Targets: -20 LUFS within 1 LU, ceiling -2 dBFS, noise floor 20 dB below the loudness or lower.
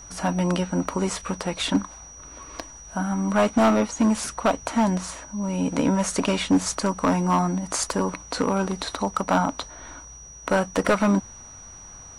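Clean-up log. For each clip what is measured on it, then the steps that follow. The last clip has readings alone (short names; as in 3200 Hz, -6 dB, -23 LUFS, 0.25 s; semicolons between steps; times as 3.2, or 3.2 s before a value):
clipped 0.9%; flat tops at -13.0 dBFS; steady tone 5800 Hz; tone level -42 dBFS; loudness -24.0 LUFS; peak -13.0 dBFS; loudness target -20.0 LUFS
-> clip repair -13 dBFS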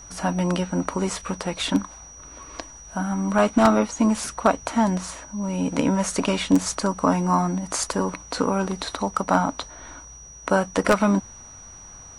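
clipped 0.0%; steady tone 5800 Hz; tone level -42 dBFS
-> notch 5800 Hz, Q 30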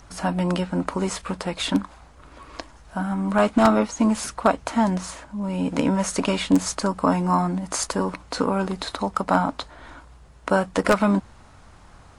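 steady tone none; loudness -23.5 LUFS; peak -4.0 dBFS; loudness target -20.0 LUFS
-> gain +3.5 dB; limiter -2 dBFS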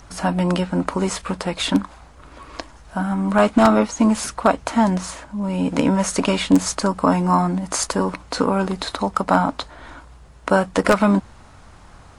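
loudness -20.0 LUFS; peak -2.0 dBFS; noise floor -46 dBFS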